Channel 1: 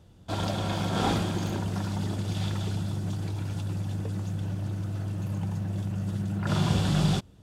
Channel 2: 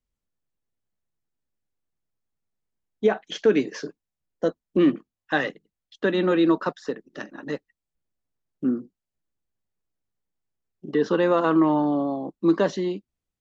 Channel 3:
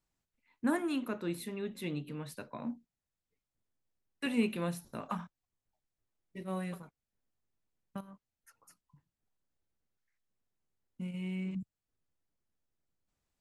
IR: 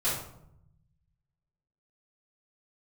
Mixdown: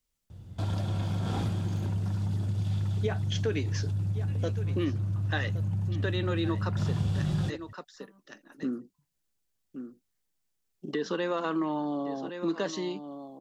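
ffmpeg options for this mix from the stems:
-filter_complex "[0:a]equalizer=frequency=100:width=0.84:gain=12.5,adelay=300,volume=-1dB[link_01];[1:a]highshelf=frequency=2300:gain=11.5,volume=-1dB,asplit=2[link_02][link_03];[link_03]volume=-15.5dB[link_04];[2:a]adelay=50,volume=-9.5dB[link_05];[link_04]aecho=0:1:1117:1[link_06];[link_01][link_02][link_05][link_06]amix=inputs=4:normalize=0,acompressor=threshold=-35dB:ratio=2"

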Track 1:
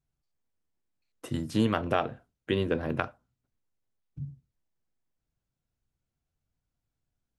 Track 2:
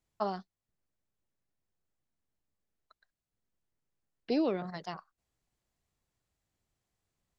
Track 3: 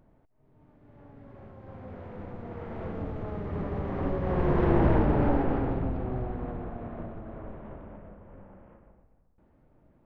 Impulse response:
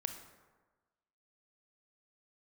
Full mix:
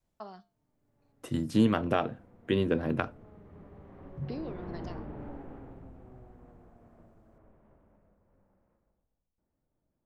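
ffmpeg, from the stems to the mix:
-filter_complex "[0:a]volume=-2dB[link_01];[1:a]acompressor=threshold=-41dB:ratio=2.5,flanger=delay=8.5:depth=5.1:regen=83:speed=0.32:shape=triangular,volume=0.5dB[link_02];[2:a]volume=-19.5dB[link_03];[link_01][link_02][link_03]amix=inputs=3:normalize=0,adynamicequalizer=threshold=0.00631:dfrequency=230:dqfactor=0.9:tfrequency=230:tqfactor=0.9:attack=5:release=100:ratio=0.375:range=2.5:mode=boostabove:tftype=bell"

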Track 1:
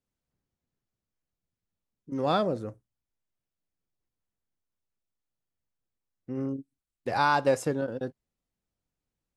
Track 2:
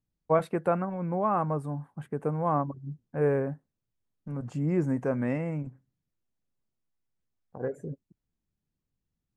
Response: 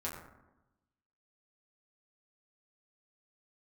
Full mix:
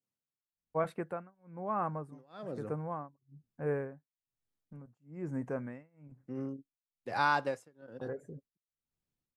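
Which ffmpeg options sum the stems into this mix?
-filter_complex "[0:a]highpass=frequency=99:width=0.5412,highpass=frequency=99:width=1.3066,volume=-6dB[link_01];[1:a]adelay=450,volume=-7.5dB[link_02];[link_01][link_02]amix=inputs=2:normalize=0,adynamicequalizer=threshold=0.00501:dfrequency=1700:dqfactor=1.2:tfrequency=1700:tqfactor=1.2:attack=5:release=100:ratio=0.375:range=2:mode=boostabove:tftype=bell,tremolo=f=1.1:d=0.98"

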